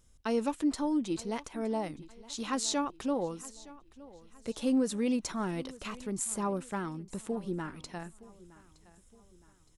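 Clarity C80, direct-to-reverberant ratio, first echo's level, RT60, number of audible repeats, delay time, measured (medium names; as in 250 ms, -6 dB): no reverb, no reverb, -20.0 dB, no reverb, 2, 916 ms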